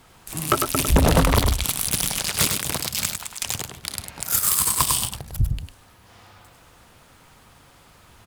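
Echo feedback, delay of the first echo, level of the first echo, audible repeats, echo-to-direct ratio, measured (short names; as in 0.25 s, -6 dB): no steady repeat, 0.101 s, -5.5 dB, 1, -5.5 dB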